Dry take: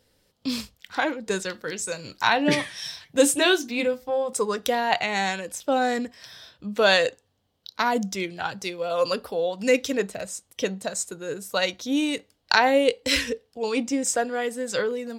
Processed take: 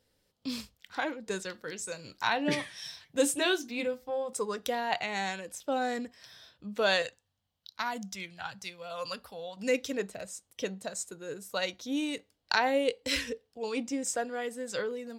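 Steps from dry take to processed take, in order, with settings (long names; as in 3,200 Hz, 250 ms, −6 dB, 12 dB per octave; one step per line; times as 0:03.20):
0:07.02–0:09.57: parametric band 380 Hz −13.5 dB 1.2 octaves
level −8 dB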